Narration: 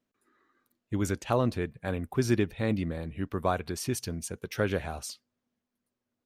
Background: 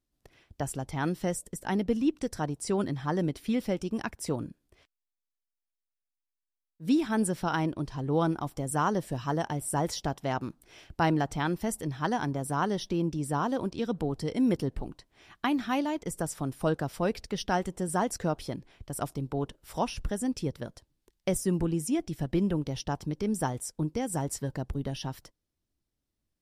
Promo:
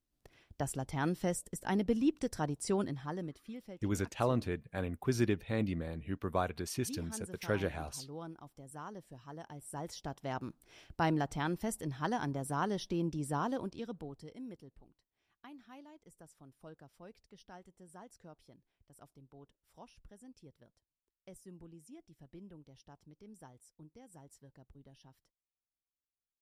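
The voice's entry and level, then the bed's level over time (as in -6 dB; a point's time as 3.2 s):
2.90 s, -5.0 dB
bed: 2.73 s -3.5 dB
3.61 s -19 dB
9.28 s -19 dB
10.55 s -5.5 dB
13.49 s -5.5 dB
14.7 s -25 dB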